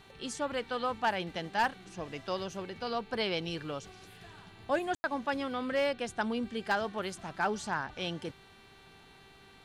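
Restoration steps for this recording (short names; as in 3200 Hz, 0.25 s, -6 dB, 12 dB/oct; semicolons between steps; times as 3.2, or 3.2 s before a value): clip repair -21 dBFS; de-hum 390.8 Hz, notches 11; room tone fill 4.95–5.04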